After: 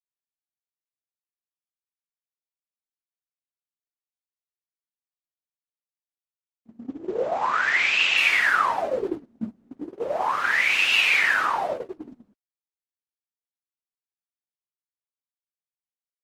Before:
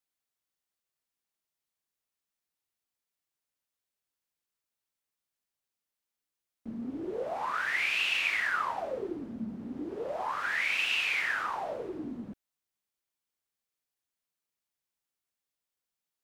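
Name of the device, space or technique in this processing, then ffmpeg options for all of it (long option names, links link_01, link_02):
video call: -af "highpass=frequency=110:poles=1,dynaudnorm=framelen=300:gausssize=11:maxgain=5.5dB,agate=range=-28dB:threshold=-30dB:ratio=16:detection=peak,volume=4.5dB" -ar 48000 -c:a libopus -b:a 16k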